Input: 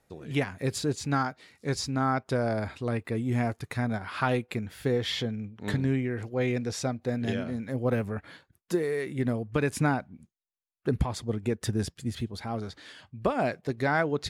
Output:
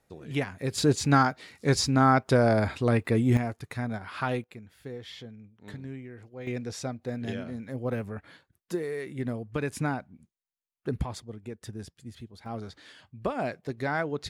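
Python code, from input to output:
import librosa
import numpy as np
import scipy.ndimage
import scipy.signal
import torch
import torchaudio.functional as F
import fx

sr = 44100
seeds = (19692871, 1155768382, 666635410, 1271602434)

y = fx.gain(x, sr, db=fx.steps((0.0, -1.5), (0.78, 6.0), (3.37, -3.0), (4.44, -13.0), (6.47, -4.0), (11.2, -11.0), (12.46, -3.5)))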